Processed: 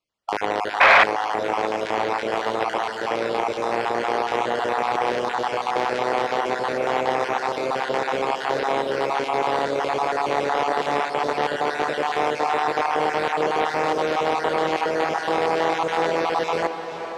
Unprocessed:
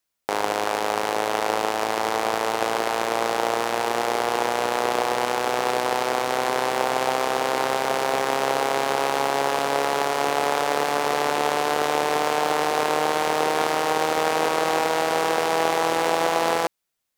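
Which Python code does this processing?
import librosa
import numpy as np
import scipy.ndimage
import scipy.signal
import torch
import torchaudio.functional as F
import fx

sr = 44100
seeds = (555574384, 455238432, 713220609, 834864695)

p1 = fx.spec_dropout(x, sr, seeds[0], share_pct=38)
p2 = fx.air_absorb(p1, sr, metres=60.0)
p3 = p2 + fx.echo_diffused(p2, sr, ms=458, feedback_pct=58, wet_db=-10.5, dry=0)
p4 = fx.spec_paint(p3, sr, seeds[1], shape='noise', start_s=0.8, length_s=0.24, low_hz=520.0, high_hz=2600.0, level_db=-12.0)
p5 = np.clip(10.0 ** (13.5 / 20.0) * p4, -1.0, 1.0) / 10.0 ** (13.5 / 20.0)
p6 = p4 + (p5 * 10.0 ** (-4.0 / 20.0))
p7 = fx.high_shelf(p6, sr, hz=5100.0, db=-9.5)
p8 = fx.transformer_sat(p7, sr, knee_hz=1800.0)
y = p8 * 10.0 ** (-1.0 / 20.0)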